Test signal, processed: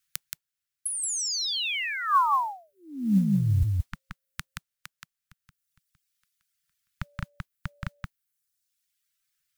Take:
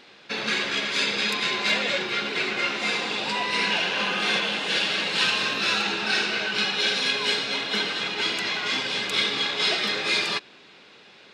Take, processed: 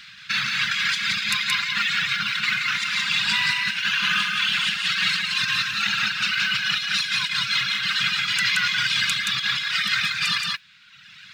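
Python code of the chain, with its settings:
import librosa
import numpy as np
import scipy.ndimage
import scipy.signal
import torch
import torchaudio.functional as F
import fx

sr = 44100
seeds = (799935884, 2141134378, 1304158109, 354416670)

y = scipy.signal.sosfilt(scipy.signal.ellip(3, 1.0, 80, [160.0, 1400.0], 'bandstop', fs=sr, output='sos'), x)
y = fx.dereverb_blind(y, sr, rt60_s=1.3)
y = fx.dynamic_eq(y, sr, hz=670.0, q=0.72, threshold_db=-46.0, ratio=4.0, max_db=5)
y = fx.over_compress(y, sr, threshold_db=-31.0, ratio=-0.5)
y = fx.mod_noise(y, sr, seeds[0], snr_db=32)
y = y + 10.0 ** (-3.0 / 20.0) * np.pad(y, (int(175 * sr / 1000.0), 0))[:len(y)]
y = y * librosa.db_to_amplitude(6.5)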